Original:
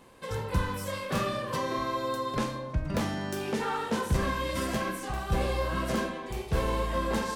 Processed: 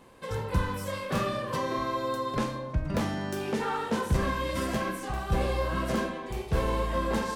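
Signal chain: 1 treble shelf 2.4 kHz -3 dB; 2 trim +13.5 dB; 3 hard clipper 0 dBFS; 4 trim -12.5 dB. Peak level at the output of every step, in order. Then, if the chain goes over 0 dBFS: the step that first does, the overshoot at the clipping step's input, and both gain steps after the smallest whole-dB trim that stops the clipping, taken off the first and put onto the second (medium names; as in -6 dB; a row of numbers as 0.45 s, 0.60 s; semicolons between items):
-16.5 dBFS, -3.0 dBFS, -3.0 dBFS, -15.5 dBFS; nothing clips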